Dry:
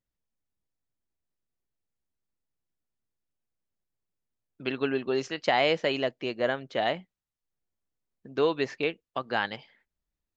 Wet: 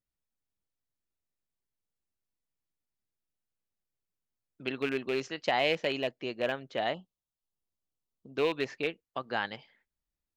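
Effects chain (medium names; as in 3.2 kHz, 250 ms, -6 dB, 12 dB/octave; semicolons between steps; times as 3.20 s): rattle on loud lows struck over -35 dBFS, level -22 dBFS; 6.94–8.37 s: Chebyshev band-stop 1.3–2.7 kHz, order 5; trim -4 dB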